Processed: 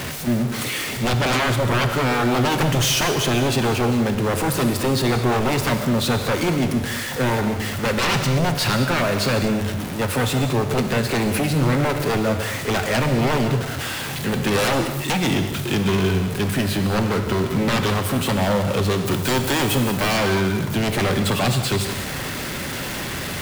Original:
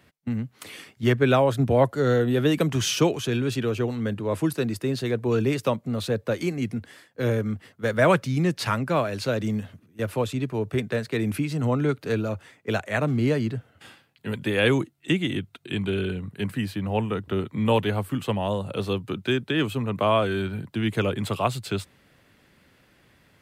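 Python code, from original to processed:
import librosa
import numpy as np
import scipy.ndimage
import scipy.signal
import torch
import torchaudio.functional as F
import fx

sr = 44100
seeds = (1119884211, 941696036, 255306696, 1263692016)

y = x + 0.5 * 10.0 ** (-28.5 / 20.0) * np.sign(x)
y = fx.high_shelf(y, sr, hz=7100.0, db=9.5, at=(19.05, 20.17))
y = 10.0 ** (-21.0 / 20.0) * (np.abs((y / 10.0 ** (-21.0 / 20.0) + 3.0) % 4.0 - 2.0) - 1.0)
y = fx.rev_gated(y, sr, seeds[0], gate_ms=250, shape='flat', drr_db=5.5)
y = y * 10.0 ** (5.0 / 20.0)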